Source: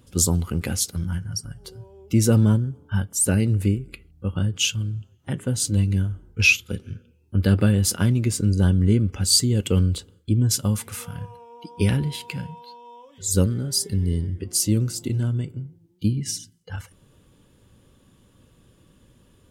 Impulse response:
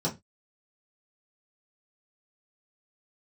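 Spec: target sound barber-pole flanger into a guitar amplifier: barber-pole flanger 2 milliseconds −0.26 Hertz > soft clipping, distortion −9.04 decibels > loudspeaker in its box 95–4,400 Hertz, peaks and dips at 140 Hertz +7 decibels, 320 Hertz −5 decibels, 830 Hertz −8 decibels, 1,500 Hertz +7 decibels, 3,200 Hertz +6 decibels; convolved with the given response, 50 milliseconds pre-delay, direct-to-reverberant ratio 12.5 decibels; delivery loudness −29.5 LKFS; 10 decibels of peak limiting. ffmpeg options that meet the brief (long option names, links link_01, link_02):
-filter_complex "[0:a]alimiter=limit=-14.5dB:level=0:latency=1,asplit=2[link_01][link_02];[1:a]atrim=start_sample=2205,adelay=50[link_03];[link_02][link_03]afir=irnorm=-1:irlink=0,volume=-20dB[link_04];[link_01][link_04]amix=inputs=2:normalize=0,asplit=2[link_05][link_06];[link_06]adelay=2,afreqshift=-0.26[link_07];[link_05][link_07]amix=inputs=2:normalize=1,asoftclip=threshold=-27.5dB,highpass=95,equalizer=frequency=140:width_type=q:width=4:gain=7,equalizer=frequency=320:width_type=q:width=4:gain=-5,equalizer=frequency=830:width_type=q:width=4:gain=-8,equalizer=frequency=1500:width_type=q:width=4:gain=7,equalizer=frequency=3200:width_type=q:width=4:gain=6,lowpass=frequency=4400:width=0.5412,lowpass=frequency=4400:width=1.3066,volume=3.5dB"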